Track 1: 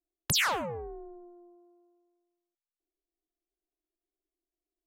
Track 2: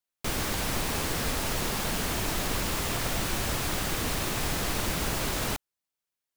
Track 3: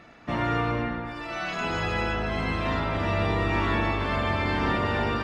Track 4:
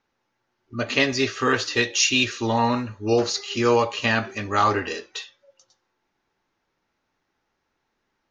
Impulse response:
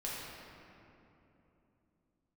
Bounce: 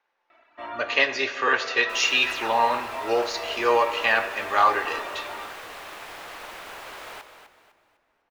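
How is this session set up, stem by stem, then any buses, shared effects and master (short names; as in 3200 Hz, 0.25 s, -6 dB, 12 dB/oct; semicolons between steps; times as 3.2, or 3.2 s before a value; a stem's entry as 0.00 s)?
-6.0 dB, 2.00 s, no send, no echo send, dry
-5.5 dB, 1.65 s, send -15.5 dB, echo send -9 dB, dry
-6.5 dB, 0.30 s, no send, no echo send, reverb removal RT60 1.8 s; comb 3.1 ms, depth 87%
+1.5 dB, 0.00 s, send -12 dB, no echo send, notch 1300 Hz, Q 14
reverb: on, RT60 3.1 s, pre-delay 6 ms
echo: feedback echo 0.252 s, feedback 34%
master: three-band isolator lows -24 dB, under 470 Hz, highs -13 dB, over 3300 Hz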